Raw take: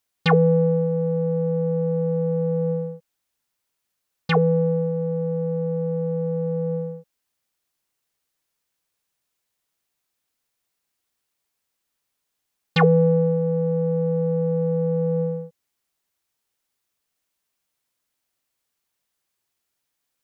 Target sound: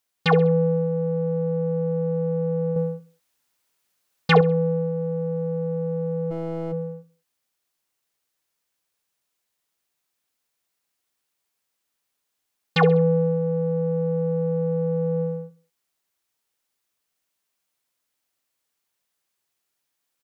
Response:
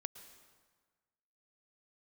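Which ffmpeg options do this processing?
-filter_complex "[0:a]aecho=1:1:66|132|198:0.168|0.0638|0.0242,asettb=1/sr,asplit=3[link_01][link_02][link_03];[link_01]atrim=end=2.764[link_04];[link_02]atrim=start=2.76:end=4.41,asetpts=PTS-STARTPTS,afade=type=in:duration=0.004:curve=qsin,afade=type=out:start_time=1.646:duration=0.004:curve=qsin,acontrast=36[link_05];[link_03]atrim=start=4.406[link_06];[link_04][link_05]acrossfade=duration=0.004:curve1=hsin:curve2=qsin[link_07];[link_07][link_06]acrossfade=duration=0.004:curve1=qsin:curve2=hsin,asplit=3[link_08][link_09][link_10];[link_08]afade=type=out:start_time=6.3:duration=0.02[link_11];[link_09]aeval=exprs='clip(val(0),-1,0.0178)':channel_layout=same,afade=type=in:start_time=6.3:duration=0.02,afade=type=out:start_time=6.71:duration=0.02[link_12];[link_10]afade=type=in:start_time=6.71:duration=0.02[link_13];[link_11][link_12][link_13]amix=inputs=3:normalize=0,asplit=2[link_14][link_15];[1:a]atrim=start_sample=2205,atrim=end_sample=4410,lowshelf=frequency=120:gain=-12[link_16];[link_15][link_16]afir=irnorm=-1:irlink=0,volume=8dB[link_17];[link_14][link_17]amix=inputs=2:normalize=0,volume=-8.5dB"

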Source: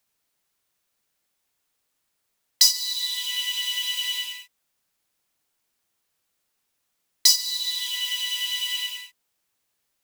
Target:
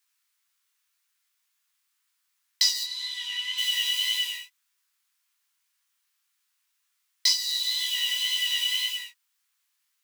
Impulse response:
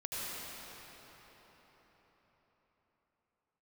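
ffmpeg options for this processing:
-filter_complex "[0:a]asplit=3[link_01][link_02][link_03];[link_01]afade=type=out:start_time=2.83:duration=0.02[link_04];[link_02]aemphasis=mode=reproduction:type=riaa,afade=type=in:start_time=2.83:duration=0.02,afade=type=out:start_time=3.57:duration=0.02[link_05];[link_03]afade=type=in:start_time=3.57:duration=0.02[link_06];[link_04][link_05][link_06]amix=inputs=3:normalize=0,flanger=delay=16.5:depth=6.6:speed=1.9,acrossover=split=4500[link_07][link_08];[link_08]acompressor=threshold=-35dB:ratio=4:attack=1:release=60[link_09];[link_07][link_09]amix=inputs=2:normalize=0,acrossover=split=1200|3000|5000[link_10][link_11][link_12][link_13];[link_10]acrusher=bits=4:mix=0:aa=0.000001[link_14];[link_14][link_11][link_12][link_13]amix=inputs=4:normalize=0,highpass=frequency=910:width_type=q:width=1.8,volume=4dB"

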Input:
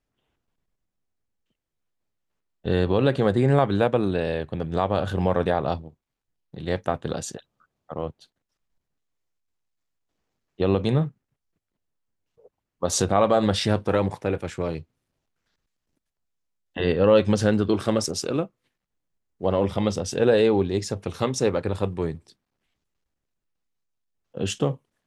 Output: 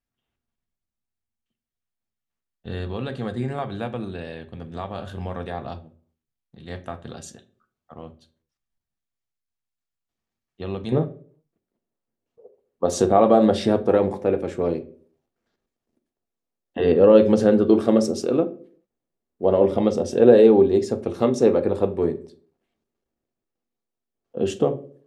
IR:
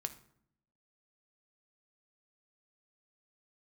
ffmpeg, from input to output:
-filter_complex "[0:a]asetnsamples=nb_out_samples=441:pad=0,asendcmd='10.92 equalizer g 13',equalizer=frequency=430:width=0.58:gain=-4.5[link_01];[1:a]atrim=start_sample=2205,asetrate=74970,aresample=44100[link_02];[link_01][link_02]afir=irnorm=-1:irlink=0"

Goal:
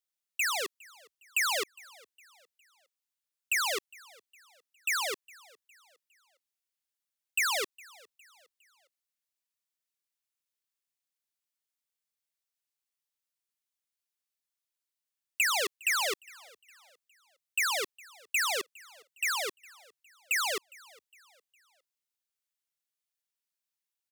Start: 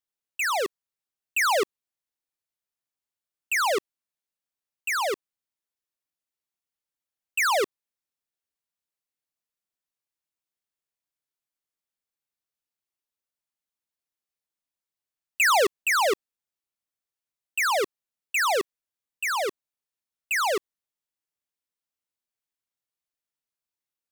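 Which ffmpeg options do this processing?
ffmpeg -i in.wav -filter_complex "[0:a]tiltshelf=frequency=1200:gain=-6,acrossover=split=490|1500|5500[link_01][link_02][link_03][link_04];[link_01]acompressor=threshold=-32dB:ratio=4[link_05];[link_02]acompressor=threshold=-34dB:ratio=4[link_06];[link_03]acompressor=threshold=-24dB:ratio=4[link_07];[link_04]acompressor=threshold=-28dB:ratio=4[link_08];[link_05][link_06][link_07][link_08]amix=inputs=4:normalize=0,asplit=4[link_09][link_10][link_11][link_12];[link_10]adelay=409,afreqshift=47,volume=-24dB[link_13];[link_11]adelay=818,afreqshift=94,volume=-31.3dB[link_14];[link_12]adelay=1227,afreqshift=141,volume=-38.7dB[link_15];[link_09][link_13][link_14][link_15]amix=inputs=4:normalize=0,volume=-4.5dB" out.wav

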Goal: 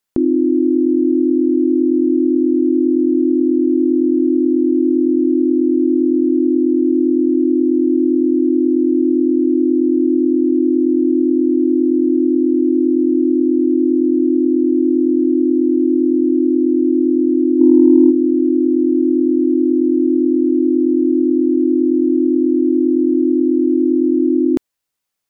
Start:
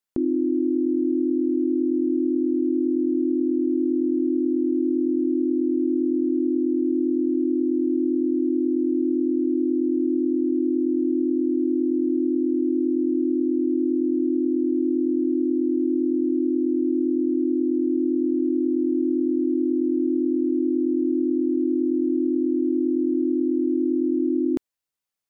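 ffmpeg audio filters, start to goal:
ffmpeg -i in.wav -filter_complex "[0:a]asplit=3[link_01][link_02][link_03];[link_01]afade=type=out:start_time=17.59:duration=0.02[link_04];[link_02]acontrast=39,afade=type=in:start_time=17.59:duration=0.02,afade=type=out:start_time=18.1:duration=0.02[link_05];[link_03]afade=type=in:start_time=18.1:duration=0.02[link_06];[link_04][link_05][link_06]amix=inputs=3:normalize=0,volume=8dB" out.wav

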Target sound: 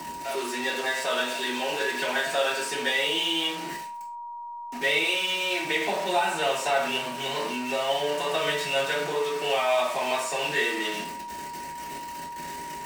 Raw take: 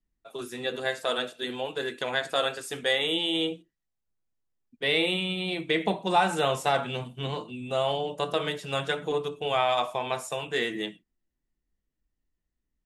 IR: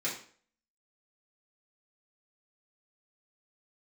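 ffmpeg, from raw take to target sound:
-filter_complex "[0:a]aeval=exprs='val(0)+0.5*0.0335*sgn(val(0))':channel_layout=same,asettb=1/sr,asplit=3[link_01][link_02][link_03];[link_01]atrim=end=5.034[link_04];[link_02]atrim=start=5.03:end=5.64,asetpts=PTS-STARTPTS,afade=type=in:duration=0.004:curve=qsin,afade=type=out:start_time=0.606:duration=0.004:curve=qsin,equalizer=frequency=170:width=1.3:gain=-14.5[link_05];[link_03]atrim=start=5.636[link_06];[link_04][link_05]acrossfade=duration=0.004:curve1=hsin:curve2=qsin[link_07];[link_07][link_06]acrossfade=duration=0.004:curve1=qsin:curve2=hsin,bandreject=frequency=105.1:width_type=h:width=4,bandreject=frequency=210.2:width_type=h:width=4,bandreject=frequency=315.3:width_type=h:width=4,bandreject=frequency=420.4:width_type=h:width=4,bandreject=frequency=525.5:width_type=h:width=4,bandreject=frequency=630.6:width_type=h:width=4,bandreject=frequency=735.7:width_type=h:width=4,bandreject=frequency=840.8:width_type=h:width=4,bandreject=frequency=945.9:width_type=h:width=4,bandreject=frequency=1051:width_type=h:width=4,bandreject=frequency=1156.1:width_type=h:width=4,bandreject=frequency=1261.2:width_type=h:width=4,bandreject=frequency=1366.3:width_type=h:width=4,bandreject=frequency=1471.4:width_type=h:width=4,bandreject=frequency=1576.5:width_type=h:width=4,bandreject=frequency=1681.6:width_type=h:width=4,bandreject=frequency=1786.7:width_type=h:width=4,bandreject=frequency=1891.8:width_type=h:width=4,bandreject=frequency=1996.9:width_type=h:width=4,bandreject=frequency=2102:width_type=h:width=4,bandreject=frequency=2207.1:width_type=h:width=4,bandreject=frequency=2312.2:width_type=h:width=4,bandreject=frequency=2417.3:width_type=h:width=4,bandreject=frequency=2522.4:width_type=h:width=4,bandreject=frequency=2627.5:width_type=h:width=4,bandreject=frequency=2732.6:width_type=h:width=4,bandreject=frequency=2837.7:width_type=h:width=4,bandreject=frequency=2942.8:width_type=h:width=4,bandreject=frequency=3047.9:width_type=h:width=4,bandreject=frequency=3153:width_type=h:width=4,bandreject=frequency=3258.1:width_type=h:width=4,aeval=exprs='val(0)+0.0282*sin(2*PI*950*n/s)':channel_layout=same,acrossover=split=560|6000[link_08][link_09][link_10];[link_08]acompressor=threshold=-41dB:ratio=4[link_11];[link_09]acompressor=threshold=-25dB:ratio=4[link_12];[link_10]acompressor=threshold=-42dB:ratio=4[link_13];[link_11][link_12][link_13]amix=inputs=3:normalize=0,bass=frequency=250:gain=-4,treble=frequency=4000:gain=0[link_14];[1:a]atrim=start_sample=2205,afade=type=out:start_time=0.22:duration=0.01,atrim=end_sample=10143,asetrate=52920,aresample=44100[link_15];[link_14][link_15]afir=irnorm=-1:irlink=0"

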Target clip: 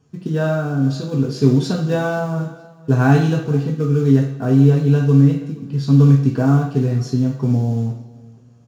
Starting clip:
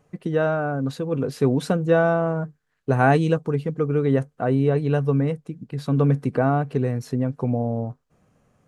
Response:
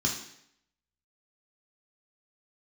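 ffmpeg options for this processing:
-filter_complex "[0:a]equalizer=frequency=4400:width=1.3:gain=8.5,asplit=2[link_01][link_02];[link_02]acrusher=bits=4:mode=log:mix=0:aa=0.000001,volume=-4dB[link_03];[link_01][link_03]amix=inputs=2:normalize=0,aecho=1:1:471|942:0.0794|0.0222[link_04];[1:a]atrim=start_sample=2205[link_05];[link_04][link_05]afir=irnorm=-1:irlink=0,volume=-13dB"

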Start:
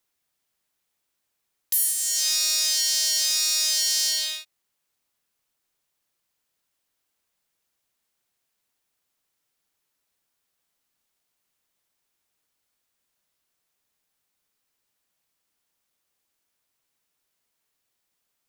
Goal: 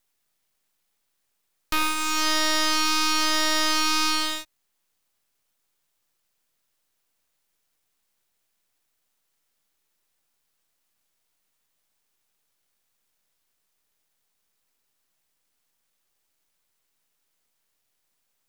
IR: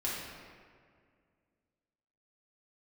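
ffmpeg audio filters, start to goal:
-filter_complex "[0:a]aeval=exprs='max(val(0),0)':channel_layout=same,acrossover=split=5100[link_01][link_02];[link_02]acompressor=threshold=-39dB:ratio=4:attack=1:release=60[link_03];[link_01][link_03]amix=inputs=2:normalize=0,volume=6.5dB"

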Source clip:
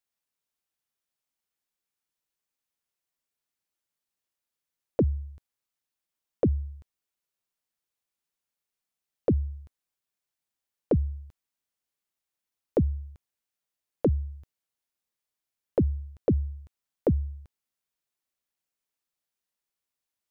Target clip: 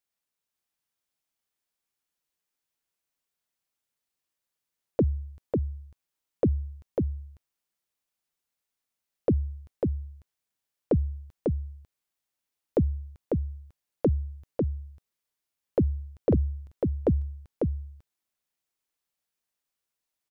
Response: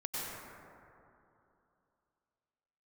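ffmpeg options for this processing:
-af "aecho=1:1:547:0.668"

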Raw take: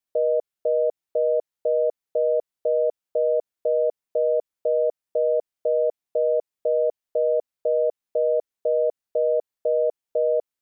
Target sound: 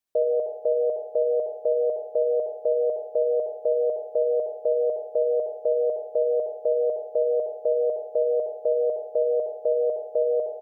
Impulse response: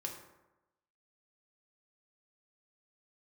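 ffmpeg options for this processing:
-filter_complex "[0:a]asplit=3[link_01][link_02][link_03];[link_02]adelay=154,afreqshift=110,volume=-22.5dB[link_04];[link_03]adelay=308,afreqshift=220,volume=-31.9dB[link_05];[link_01][link_04][link_05]amix=inputs=3:normalize=0,asplit=2[link_06][link_07];[1:a]atrim=start_sample=2205,asetrate=52920,aresample=44100,adelay=65[link_08];[link_07][link_08]afir=irnorm=-1:irlink=0,volume=-3.5dB[link_09];[link_06][link_09]amix=inputs=2:normalize=0"

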